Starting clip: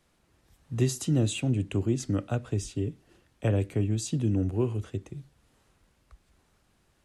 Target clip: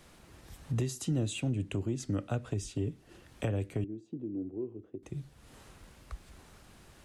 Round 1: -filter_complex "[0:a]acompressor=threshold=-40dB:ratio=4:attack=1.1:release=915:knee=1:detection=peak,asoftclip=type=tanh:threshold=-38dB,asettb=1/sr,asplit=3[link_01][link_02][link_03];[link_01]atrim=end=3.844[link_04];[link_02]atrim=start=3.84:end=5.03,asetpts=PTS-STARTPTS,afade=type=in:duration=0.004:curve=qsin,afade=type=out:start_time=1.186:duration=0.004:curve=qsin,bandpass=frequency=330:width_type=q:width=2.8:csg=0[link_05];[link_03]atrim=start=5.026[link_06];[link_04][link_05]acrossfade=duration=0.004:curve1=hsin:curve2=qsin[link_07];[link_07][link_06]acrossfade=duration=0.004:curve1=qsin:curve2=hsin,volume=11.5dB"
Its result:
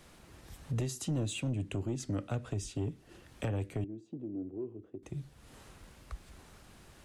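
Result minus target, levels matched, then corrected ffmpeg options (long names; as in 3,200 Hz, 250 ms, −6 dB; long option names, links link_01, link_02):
soft clipping: distortion +16 dB
-filter_complex "[0:a]acompressor=threshold=-40dB:ratio=4:attack=1.1:release=915:knee=1:detection=peak,asoftclip=type=tanh:threshold=-28dB,asettb=1/sr,asplit=3[link_01][link_02][link_03];[link_01]atrim=end=3.844[link_04];[link_02]atrim=start=3.84:end=5.03,asetpts=PTS-STARTPTS,afade=type=in:duration=0.004:curve=qsin,afade=type=out:start_time=1.186:duration=0.004:curve=qsin,bandpass=frequency=330:width_type=q:width=2.8:csg=0[link_05];[link_03]atrim=start=5.026[link_06];[link_04][link_05]acrossfade=duration=0.004:curve1=hsin:curve2=qsin[link_07];[link_07][link_06]acrossfade=duration=0.004:curve1=qsin:curve2=hsin,volume=11.5dB"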